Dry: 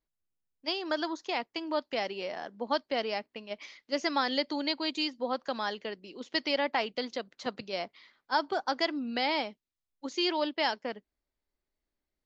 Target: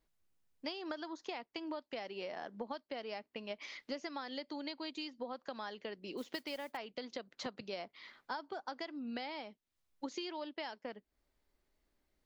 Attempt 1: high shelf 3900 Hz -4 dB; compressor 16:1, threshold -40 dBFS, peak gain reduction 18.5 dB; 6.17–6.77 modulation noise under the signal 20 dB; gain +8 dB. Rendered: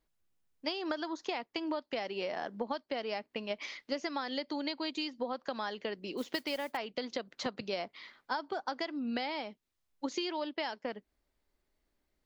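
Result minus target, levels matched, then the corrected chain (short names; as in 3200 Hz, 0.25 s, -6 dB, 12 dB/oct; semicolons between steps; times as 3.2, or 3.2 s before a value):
compressor: peak gain reduction -6.5 dB
high shelf 3900 Hz -4 dB; compressor 16:1, threshold -47 dBFS, peak gain reduction 25 dB; 6.17–6.77 modulation noise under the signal 20 dB; gain +8 dB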